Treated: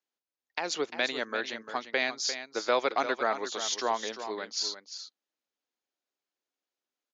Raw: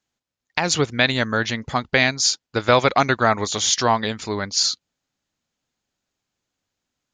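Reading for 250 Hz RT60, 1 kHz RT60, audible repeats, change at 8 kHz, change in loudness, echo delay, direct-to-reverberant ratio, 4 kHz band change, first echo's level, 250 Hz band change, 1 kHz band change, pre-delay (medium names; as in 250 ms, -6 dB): no reverb, no reverb, 1, -13.5 dB, -11.0 dB, 348 ms, no reverb, -11.5 dB, -10.5 dB, -15.0 dB, -10.5 dB, no reverb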